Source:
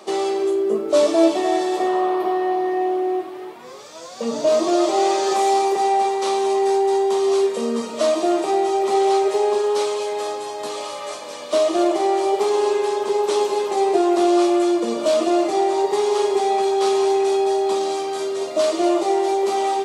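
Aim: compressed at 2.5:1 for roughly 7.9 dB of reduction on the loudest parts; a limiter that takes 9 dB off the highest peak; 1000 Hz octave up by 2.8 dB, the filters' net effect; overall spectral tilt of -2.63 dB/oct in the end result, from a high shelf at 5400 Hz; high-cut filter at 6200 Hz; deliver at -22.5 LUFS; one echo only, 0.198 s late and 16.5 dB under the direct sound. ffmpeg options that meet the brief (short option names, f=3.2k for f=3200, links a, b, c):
-af "lowpass=6.2k,equalizer=f=1k:t=o:g=4,highshelf=f=5.4k:g=8.5,acompressor=threshold=-23dB:ratio=2.5,alimiter=limit=-20dB:level=0:latency=1,aecho=1:1:198:0.15,volume=5dB"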